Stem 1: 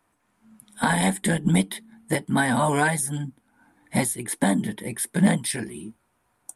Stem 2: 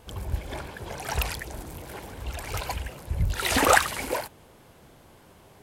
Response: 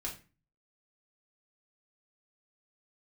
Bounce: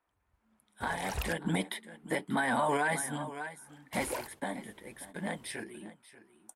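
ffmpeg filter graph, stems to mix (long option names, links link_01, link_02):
-filter_complex "[0:a]bass=frequency=250:gain=-14,treble=frequency=4000:gain=-9,volume=1.5dB,afade=type=in:start_time=1.24:duration=0.27:silence=0.316228,afade=type=out:start_time=3.73:duration=0.56:silence=0.298538,afade=type=in:start_time=5.26:duration=0.56:silence=0.421697,asplit=3[link_01][link_02][link_03];[link_02]volume=-16.5dB[link_04];[1:a]volume=-13.5dB,asplit=3[link_05][link_06][link_07];[link_05]atrim=end=1.33,asetpts=PTS-STARTPTS,afade=type=out:start_time=1.326:duration=0.004:curve=hsin[link_08];[link_06]atrim=start=1.33:end=3.67,asetpts=PTS-STARTPTS,volume=0[link_09];[link_07]atrim=start=3.67,asetpts=PTS-STARTPTS,afade=type=in:duration=0.004:curve=hsin[link_10];[link_08][link_09][link_10]concat=n=3:v=0:a=1[link_11];[link_03]apad=whole_len=247877[link_12];[link_11][link_12]sidechaingate=range=-38dB:threshold=-58dB:ratio=16:detection=peak[link_13];[link_04]aecho=0:1:587:1[link_14];[link_01][link_13][link_14]amix=inputs=3:normalize=0,acontrast=30,alimiter=limit=-21dB:level=0:latency=1:release=23"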